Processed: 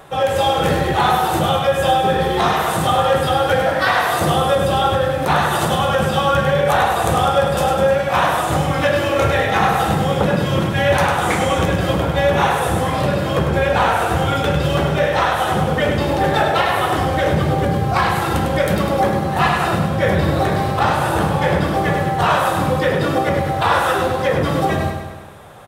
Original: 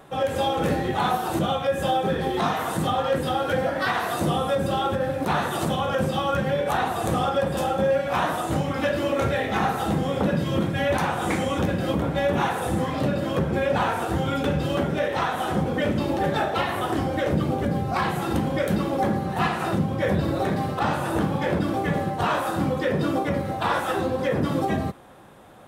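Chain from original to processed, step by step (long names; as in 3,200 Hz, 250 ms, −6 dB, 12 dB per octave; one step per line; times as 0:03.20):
parametric band 250 Hz −9 dB 1 octave
repeating echo 101 ms, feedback 57%, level −6.5 dB
level +8 dB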